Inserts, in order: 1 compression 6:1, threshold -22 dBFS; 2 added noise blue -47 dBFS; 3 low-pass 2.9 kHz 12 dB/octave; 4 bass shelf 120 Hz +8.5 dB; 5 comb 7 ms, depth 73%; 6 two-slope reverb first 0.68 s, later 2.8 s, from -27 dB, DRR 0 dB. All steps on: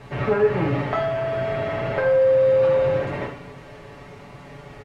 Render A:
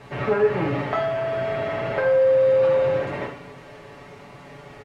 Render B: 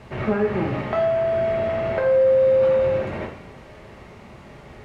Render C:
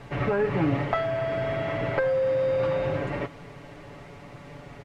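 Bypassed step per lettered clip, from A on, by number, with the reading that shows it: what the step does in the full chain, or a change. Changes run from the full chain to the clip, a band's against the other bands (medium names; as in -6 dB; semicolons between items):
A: 4, 125 Hz band -3.5 dB; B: 5, 125 Hz band -3.0 dB; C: 6, momentary loudness spread change +9 LU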